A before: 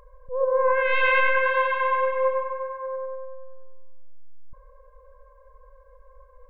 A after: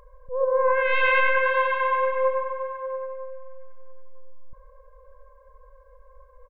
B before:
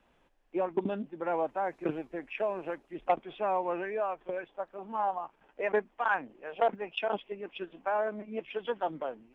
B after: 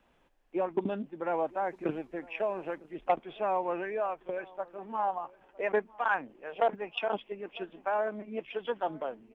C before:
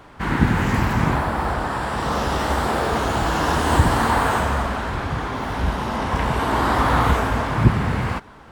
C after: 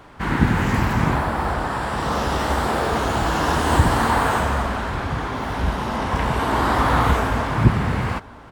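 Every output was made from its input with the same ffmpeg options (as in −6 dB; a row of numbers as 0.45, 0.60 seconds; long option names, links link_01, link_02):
-filter_complex "[0:a]asplit=2[link_01][link_02];[link_02]adelay=955,lowpass=frequency=1300:poles=1,volume=-22dB,asplit=2[link_03][link_04];[link_04]adelay=955,lowpass=frequency=1300:poles=1,volume=0.21[link_05];[link_01][link_03][link_05]amix=inputs=3:normalize=0"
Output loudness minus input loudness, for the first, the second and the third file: 0.0, 0.0, 0.0 LU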